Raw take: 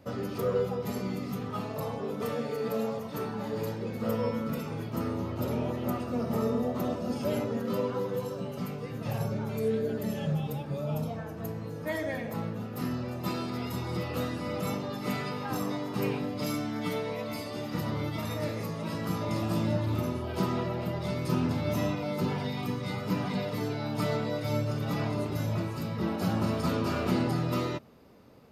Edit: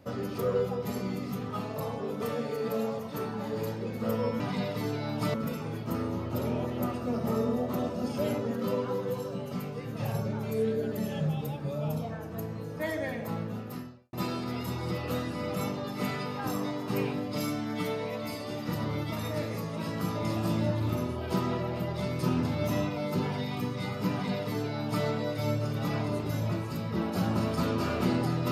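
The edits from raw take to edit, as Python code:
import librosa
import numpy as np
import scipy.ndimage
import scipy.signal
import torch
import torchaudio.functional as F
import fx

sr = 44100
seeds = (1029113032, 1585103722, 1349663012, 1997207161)

y = fx.edit(x, sr, fx.fade_out_span(start_s=12.68, length_s=0.51, curve='qua'),
    fx.duplicate(start_s=23.17, length_s=0.94, to_s=4.4), tone=tone)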